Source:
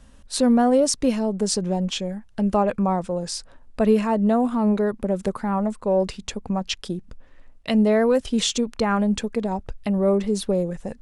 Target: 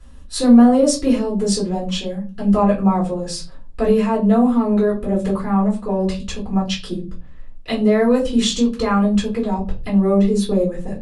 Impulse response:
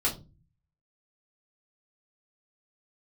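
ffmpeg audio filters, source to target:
-filter_complex "[1:a]atrim=start_sample=2205,asetrate=39249,aresample=44100[s0];[0:a][s0]afir=irnorm=-1:irlink=0,volume=0.501"

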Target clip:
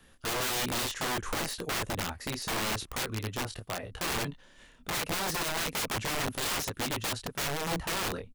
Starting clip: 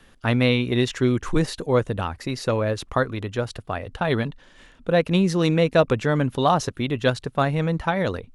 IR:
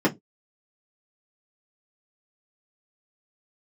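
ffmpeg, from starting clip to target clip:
-af "highshelf=f=9600:g=12,aecho=1:1:17|28:0.376|0.473,aeval=exprs='(mod(8.91*val(0)+1,2)-1)/8.91':c=same,volume=0.422"

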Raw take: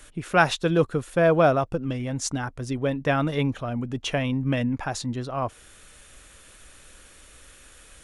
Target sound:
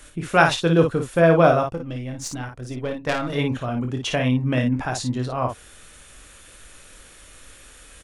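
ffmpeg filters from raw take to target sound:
-filter_complex "[0:a]asettb=1/sr,asplit=3[s0][s1][s2];[s0]atrim=end=1.634[s3];[s1]atrim=start=1.63:end=3.3,asetpts=PTS-STARTPTS,afade=t=in:d=0.004:c=qsin,afade=t=out:st=1.666:d=0.004:c=qsin,aeval=exprs='0.266*(cos(1*acos(clip(val(0)/0.266,-1,1)))-cos(1*PI/2))+0.0668*(cos(3*acos(clip(val(0)/0.266,-1,1)))-cos(3*PI/2))+0.0133*(cos(5*acos(clip(val(0)/0.266,-1,1)))-cos(5*PI/2))+0.00668*(cos(6*acos(clip(val(0)/0.266,-1,1)))-cos(6*PI/2))':c=same[s4];[s2]atrim=start=3.296[s5];[s3][s4]acrossfade=d=0.004:c1=hsin:c2=qsin[s6];[s6][s5]acrossfade=d=0.004:c1=qsin:c2=hsin,aecho=1:1:24|55:0.398|0.501,volume=1.26"

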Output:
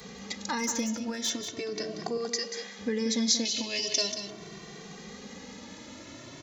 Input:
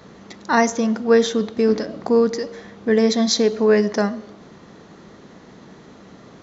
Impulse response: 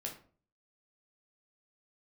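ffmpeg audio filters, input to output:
-filter_complex "[0:a]asettb=1/sr,asplit=3[s0][s1][s2];[s0]atrim=end=2.174[s3];[s1]atrim=start=2.17:end=2.79,asetpts=PTS-STARTPTS,afade=t=in:d=0.004:c=qsin,afade=t=out:st=0.616:d=0.004:c=qsin,highpass=f=800:p=1[s4];[s2]atrim=start=2.786[s5];[s3][s4]acrossfade=d=0.004:c1=hsin:c2=qsin[s6];[s6][s5]acrossfade=d=0.004:c1=qsin:c2=hsin,asettb=1/sr,asplit=3[s7][s8][s9];[s7]atrim=end=3.454[s10];[s8]atrim=start=3.45:end=4.12,asetpts=PTS-STARTPTS,afade=t=in:d=0.004:c=qsin,afade=t=out:st=0.666:d=0.004:c=qsin,highshelf=f=2200:t=q:w=3:g=12[s11];[s9]atrim=start=4.116[s12];[s10][s11]acrossfade=d=0.004:c1=hsin:c2=qsin[s13];[s13][s12]acrossfade=d=0.004:c1=qsin:c2=hsin,alimiter=limit=0.266:level=0:latency=1:release=106,acompressor=threshold=0.0224:ratio=2,aexciter=amount=3.5:drive=2.8:freq=2000,asettb=1/sr,asplit=3[s14][s15][s16];[s14]atrim=end=0.584[s17];[s15]atrim=start=0.58:end=1.3,asetpts=PTS-STARTPTS,afade=t=in:d=0.004:c=qsin,afade=t=out:st=0.716:d=0.004:c=qsin,volume=11.2,asoftclip=hard,volume=0.0891[s18];[s16]atrim=start=1.296[s19];[s17][s18]acrossfade=d=0.004:c1=hsin:c2=qsin[s20];[s20][s19]acrossfade=d=0.004:c1=qsin:c2=hsin,aecho=1:1:185:0.355,asplit=2[s21][s22];[s22]adelay=2.1,afreqshift=0.4[s23];[s21][s23]amix=inputs=2:normalize=1"

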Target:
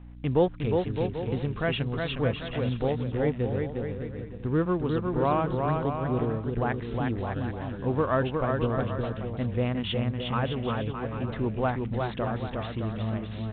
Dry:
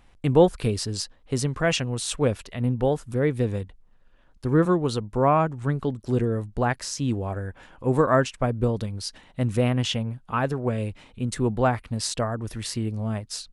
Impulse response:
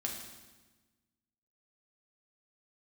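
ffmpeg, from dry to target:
-filter_complex "[0:a]asplit=2[s0][s1];[s1]acompressor=threshold=0.0178:ratio=4,volume=1.33[s2];[s0][s2]amix=inputs=2:normalize=0,aeval=exprs='val(0)+0.0158*(sin(2*PI*60*n/s)+sin(2*PI*2*60*n/s)/2+sin(2*PI*3*60*n/s)/3+sin(2*PI*4*60*n/s)/4+sin(2*PI*5*60*n/s)/5)':c=same,adynamicsmooth=sensitivity=8:basefreq=2100,aecho=1:1:360|612|788.4|911.9|998.3:0.631|0.398|0.251|0.158|0.1,volume=0.422" -ar 8000 -c:a pcm_mulaw

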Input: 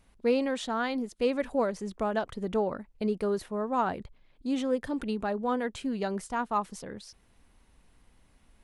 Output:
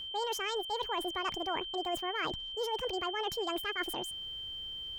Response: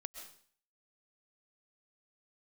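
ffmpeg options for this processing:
-af "areverse,acompressor=threshold=0.0178:ratio=10,areverse,aeval=exprs='val(0)+0.00794*sin(2*PI*1800*n/s)':c=same,asetrate=76440,aresample=44100,volume=1.41"

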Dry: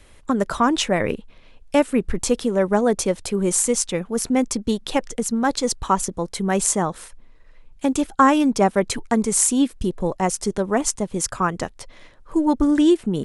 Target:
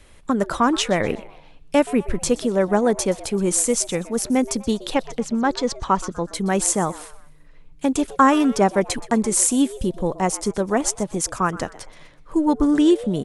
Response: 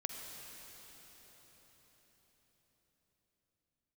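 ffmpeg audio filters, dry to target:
-filter_complex "[0:a]asettb=1/sr,asplit=3[s0][s1][s2];[s0]atrim=end=4.944[s3];[s1]atrim=start=4.94:end=6.27,asetpts=PTS-STARTPTS,afade=t=in:d=0.004:c=qsin,afade=t=out:st=1.326:d=0.004:c=qsin,lowpass=4700[s4];[s2]atrim=start=6.266[s5];[s3][s4]acrossfade=d=0.004:c1=hsin:c2=qsin[s6];[s6][s5]acrossfade=d=0.004:c1=qsin:c2=hsin,asplit=2[s7][s8];[s8]asplit=3[s9][s10][s11];[s9]adelay=124,afreqshift=140,volume=0.119[s12];[s10]adelay=248,afreqshift=280,volume=0.049[s13];[s11]adelay=372,afreqshift=420,volume=0.02[s14];[s12][s13][s14]amix=inputs=3:normalize=0[s15];[s7][s15]amix=inputs=2:normalize=0"

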